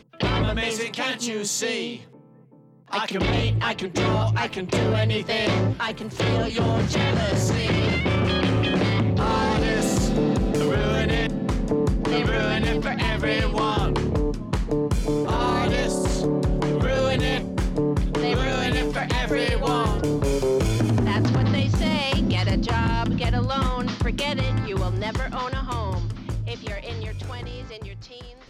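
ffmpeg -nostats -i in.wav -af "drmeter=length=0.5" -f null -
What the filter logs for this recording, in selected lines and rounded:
Channel 1: DR: 4.9
Overall DR: 4.9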